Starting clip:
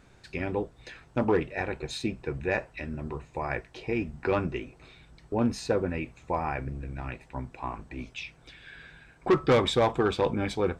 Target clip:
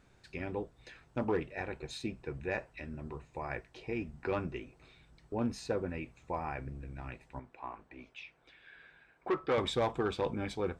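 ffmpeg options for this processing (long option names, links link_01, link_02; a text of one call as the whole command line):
ffmpeg -i in.wav -filter_complex "[0:a]asettb=1/sr,asplit=3[link_01][link_02][link_03];[link_01]atrim=end=7.394[link_04];[link_02]atrim=start=7.39:end=9.58,asetpts=PTS-STARTPTS,afade=type=in:duration=0.004:curve=qsin,afade=type=out:start_time=2.186:duration=0.004:curve=qsin,bass=frequency=250:gain=-12,treble=frequency=4000:gain=-11[link_05];[link_03]atrim=start=9.576[link_06];[link_04][link_05]acrossfade=duration=0.004:curve1=hsin:curve2=qsin[link_07];[link_07][link_06]acrossfade=duration=0.004:curve1=qsin:curve2=hsin,volume=-7.5dB" out.wav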